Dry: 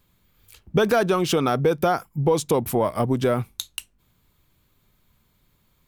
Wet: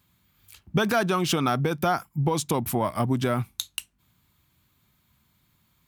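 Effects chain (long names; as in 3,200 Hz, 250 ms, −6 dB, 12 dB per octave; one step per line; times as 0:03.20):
high-pass filter 68 Hz
parametric band 470 Hz −9.5 dB 0.77 octaves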